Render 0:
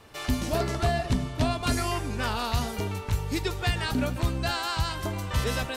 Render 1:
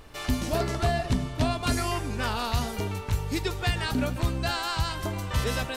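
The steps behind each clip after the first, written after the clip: added noise brown -50 dBFS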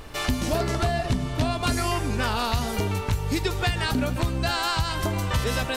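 compression 4:1, threshold -29 dBFS, peak gain reduction 8 dB; trim +7.5 dB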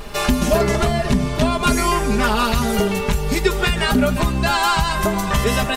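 dynamic bell 4.4 kHz, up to -5 dB, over -42 dBFS, Q 1.9; comb 4.9 ms, depth 89%; trim +6 dB

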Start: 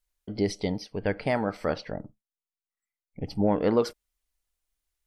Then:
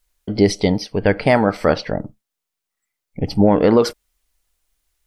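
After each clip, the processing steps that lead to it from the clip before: loudness maximiser +13 dB; trim -1 dB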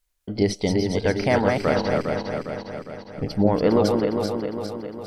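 backward echo that repeats 203 ms, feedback 73%, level -3.5 dB; trim -6.5 dB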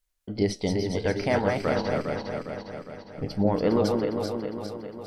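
flange 0.48 Hz, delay 6.9 ms, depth 6.2 ms, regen -69%

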